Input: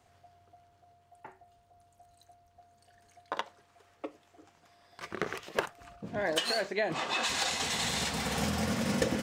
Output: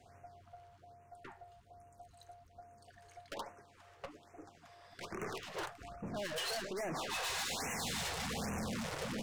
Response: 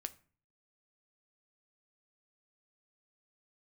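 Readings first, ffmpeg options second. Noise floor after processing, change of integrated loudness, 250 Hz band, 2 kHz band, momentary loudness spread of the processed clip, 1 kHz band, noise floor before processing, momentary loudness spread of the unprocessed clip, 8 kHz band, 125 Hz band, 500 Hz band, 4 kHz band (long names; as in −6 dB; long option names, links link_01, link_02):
−63 dBFS, −8.0 dB, −8.0 dB, −8.0 dB, 21 LU, −6.5 dB, −66 dBFS, 17 LU, −6.0 dB, −7.0 dB, −8.5 dB, −8.0 dB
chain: -af "highshelf=frequency=3600:gain=-10,aeval=exprs='(tanh(141*val(0)+0.2)-tanh(0.2))/141':channel_layout=same,equalizer=frequency=8700:width=0.41:gain=4,aeval=exprs='0.0133*(cos(1*acos(clip(val(0)/0.0133,-1,1)))-cos(1*PI/2))+0.000944*(cos(6*acos(clip(val(0)/0.0133,-1,1)))-cos(6*PI/2))':channel_layout=same,afftfilt=real='re*(1-between(b*sr/1024,210*pow(4100/210,0.5+0.5*sin(2*PI*1.2*pts/sr))/1.41,210*pow(4100/210,0.5+0.5*sin(2*PI*1.2*pts/sr))*1.41))':imag='im*(1-between(b*sr/1024,210*pow(4100/210,0.5+0.5*sin(2*PI*1.2*pts/sr))/1.41,210*pow(4100/210,0.5+0.5*sin(2*PI*1.2*pts/sr))*1.41))':win_size=1024:overlap=0.75,volume=5dB"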